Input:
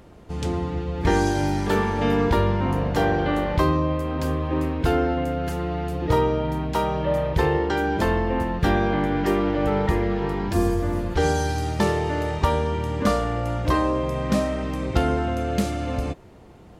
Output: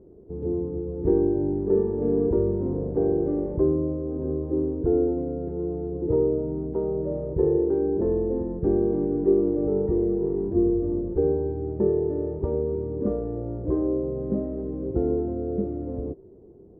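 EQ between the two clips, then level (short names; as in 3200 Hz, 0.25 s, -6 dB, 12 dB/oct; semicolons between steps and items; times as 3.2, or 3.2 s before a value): synth low-pass 400 Hz, resonance Q 4.9; air absorption 63 m; -7.5 dB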